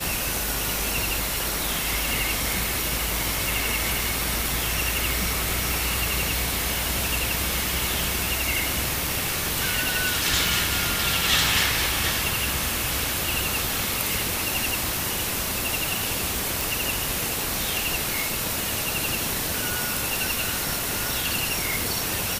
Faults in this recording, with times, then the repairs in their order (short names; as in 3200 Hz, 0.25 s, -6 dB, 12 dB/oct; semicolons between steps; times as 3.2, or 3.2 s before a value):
10.47 pop
16.61 pop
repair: de-click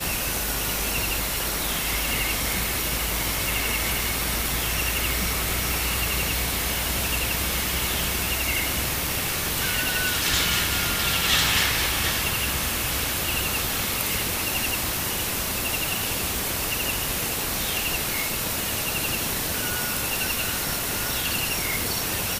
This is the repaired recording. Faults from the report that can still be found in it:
none